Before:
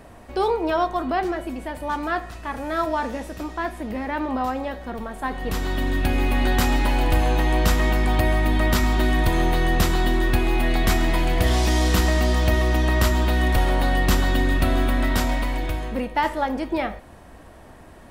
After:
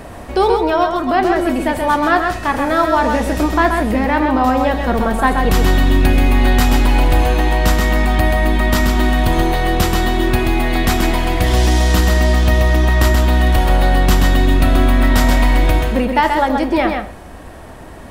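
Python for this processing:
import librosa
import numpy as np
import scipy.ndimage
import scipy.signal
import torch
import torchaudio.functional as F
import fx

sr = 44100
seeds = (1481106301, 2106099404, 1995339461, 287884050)

p1 = fx.rider(x, sr, range_db=10, speed_s=0.5)
p2 = p1 + fx.echo_single(p1, sr, ms=130, db=-5.0, dry=0)
y = p2 * 10.0 ** (6.0 / 20.0)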